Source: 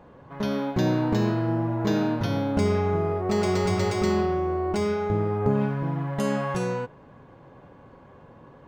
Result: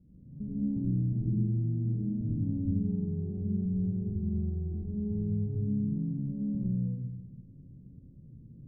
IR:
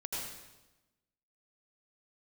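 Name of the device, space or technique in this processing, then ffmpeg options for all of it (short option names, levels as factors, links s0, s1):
club heard from the street: -filter_complex "[0:a]alimiter=limit=0.0841:level=0:latency=1:release=105,lowpass=f=230:w=0.5412,lowpass=f=230:w=1.3066[s0];[1:a]atrim=start_sample=2205[s1];[s0][s1]afir=irnorm=-1:irlink=0"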